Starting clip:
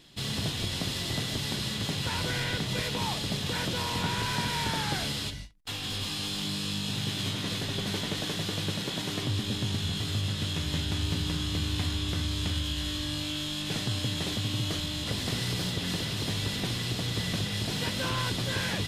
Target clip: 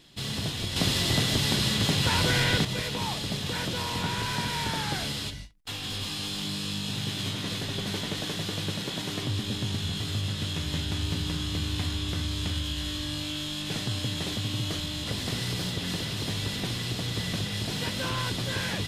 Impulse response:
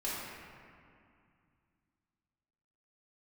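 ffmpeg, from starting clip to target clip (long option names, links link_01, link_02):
-filter_complex "[0:a]asettb=1/sr,asplit=3[link_01][link_02][link_03];[link_01]atrim=end=0.764[link_04];[link_02]atrim=start=0.76:end=2.65,asetpts=PTS-STARTPTS,afade=type=in:duration=0.004:curve=qsin,afade=type=out:start_time=1.886:duration=0.004:curve=qsin,acontrast=69[link_05];[link_03]atrim=start=2.646[link_06];[link_04][link_05]acrossfade=duration=0.004:curve1=hsin:curve2=qsin[link_07];[link_07][link_06]acrossfade=duration=0.004:curve1=qsin:curve2=hsin"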